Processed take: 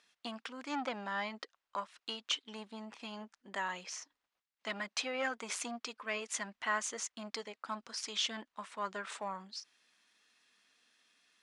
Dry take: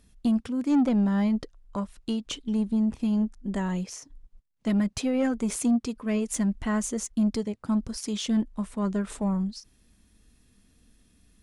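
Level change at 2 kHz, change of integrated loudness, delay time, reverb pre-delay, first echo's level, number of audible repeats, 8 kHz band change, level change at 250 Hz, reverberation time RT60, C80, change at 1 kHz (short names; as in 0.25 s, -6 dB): +2.5 dB, -12.0 dB, none, none, none, none, -5.5 dB, -23.5 dB, none, none, -1.0 dB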